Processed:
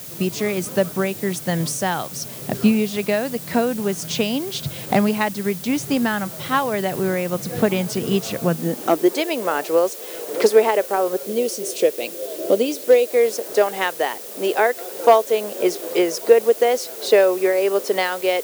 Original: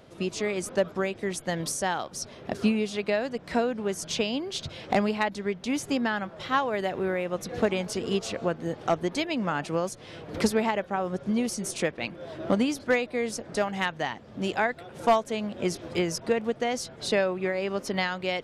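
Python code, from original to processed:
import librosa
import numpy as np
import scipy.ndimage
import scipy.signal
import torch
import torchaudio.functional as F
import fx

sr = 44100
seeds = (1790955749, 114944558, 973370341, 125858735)

y = fx.band_shelf(x, sr, hz=1300.0, db=-10.5, octaves=1.7, at=(11.25, 13.11))
y = fx.dmg_noise_colour(y, sr, seeds[0], colour='blue', level_db=-41.0)
y = fx.filter_sweep_highpass(y, sr, from_hz=130.0, to_hz=430.0, start_s=8.39, end_s=9.19, q=2.9)
y = y * librosa.db_to_amplitude(5.0)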